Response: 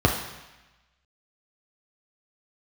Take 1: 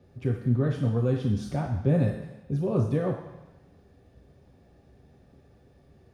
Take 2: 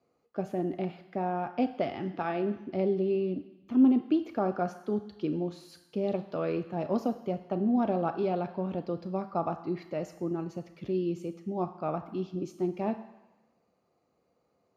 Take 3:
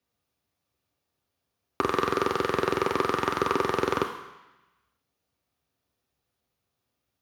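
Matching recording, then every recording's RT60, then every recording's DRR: 1; 1.0, 1.0, 1.0 seconds; −0.5, 8.0, 3.5 decibels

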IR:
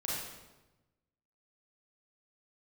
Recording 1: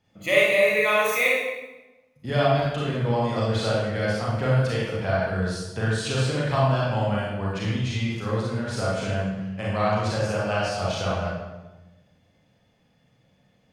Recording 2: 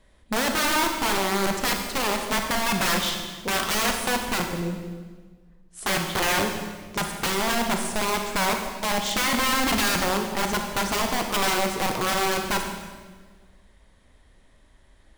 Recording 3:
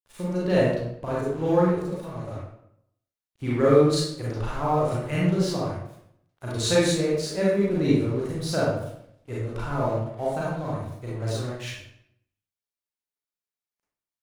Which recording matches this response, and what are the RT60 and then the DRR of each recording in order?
1; 1.1, 1.5, 0.75 seconds; −6.5, 3.5, −7.0 decibels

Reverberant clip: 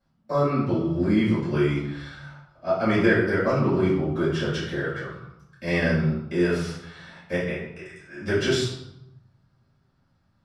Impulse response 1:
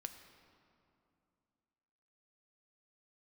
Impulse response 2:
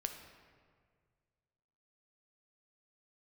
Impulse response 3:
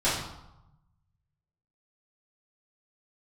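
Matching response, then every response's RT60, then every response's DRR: 3; 2.6, 1.9, 0.90 seconds; 6.5, 5.0, −12.5 decibels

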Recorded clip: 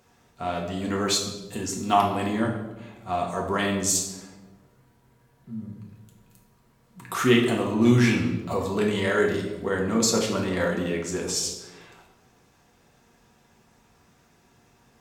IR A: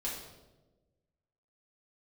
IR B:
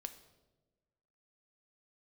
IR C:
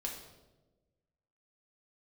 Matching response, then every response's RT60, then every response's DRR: C; 1.2, 1.2, 1.2 seconds; −6.5, 8.5, −1.0 decibels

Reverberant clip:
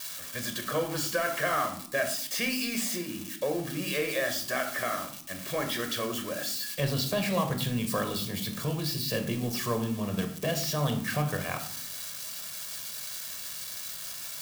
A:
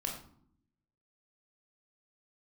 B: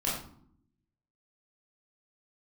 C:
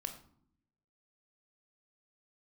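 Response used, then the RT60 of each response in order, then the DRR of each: C; 0.65, 0.60, 0.65 seconds; 0.0, −6.5, 5.5 decibels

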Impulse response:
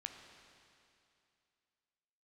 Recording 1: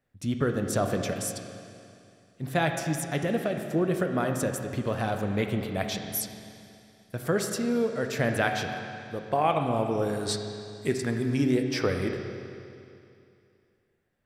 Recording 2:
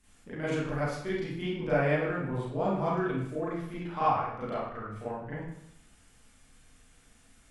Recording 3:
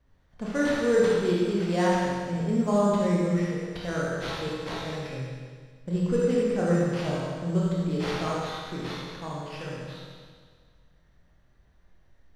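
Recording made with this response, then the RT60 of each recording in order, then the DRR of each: 1; 2.6, 0.75, 1.7 seconds; 4.0, −11.0, −6.0 decibels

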